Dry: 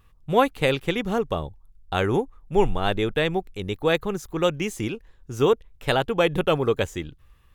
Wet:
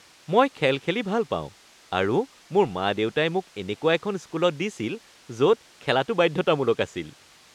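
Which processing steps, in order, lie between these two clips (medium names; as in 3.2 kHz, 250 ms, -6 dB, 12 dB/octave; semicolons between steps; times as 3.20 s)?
word length cut 8-bit, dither triangular; band-pass 150–5900 Hz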